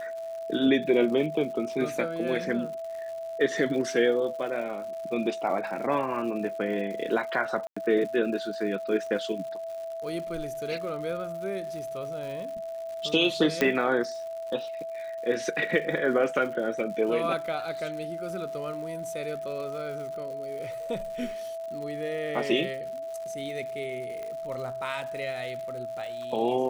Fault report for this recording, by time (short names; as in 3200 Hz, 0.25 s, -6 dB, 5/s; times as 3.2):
crackle 170/s -38 dBFS
tone 660 Hz -33 dBFS
7.67–7.76 gap 95 ms
13.61 pop -10 dBFS
24.23 pop -25 dBFS